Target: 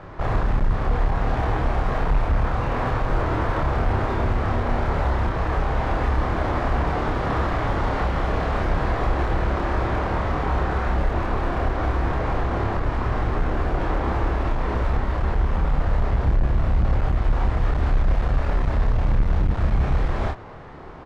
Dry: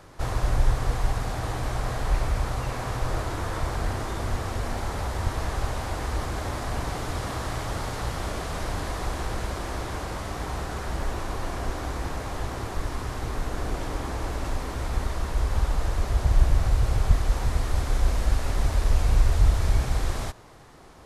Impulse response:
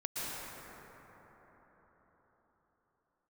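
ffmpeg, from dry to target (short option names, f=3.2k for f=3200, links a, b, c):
-filter_complex "[0:a]lowpass=2.1k,asplit=2[a][b];[b]acompressor=threshold=-29dB:ratio=6,volume=1dB[c];[a][c]amix=inputs=2:normalize=0,asoftclip=type=hard:threshold=-20dB,asplit=2[d][e];[e]adelay=29,volume=-3dB[f];[d][f]amix=inputs=2:normalize=0,volume=2dB"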